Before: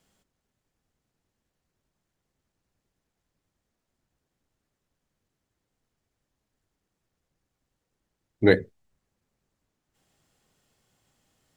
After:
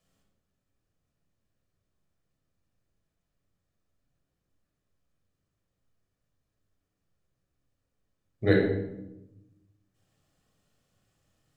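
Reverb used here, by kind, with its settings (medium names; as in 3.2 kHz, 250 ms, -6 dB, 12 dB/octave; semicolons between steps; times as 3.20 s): simulated room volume 3300 m³, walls furnished, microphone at 6 m; trim -9 dB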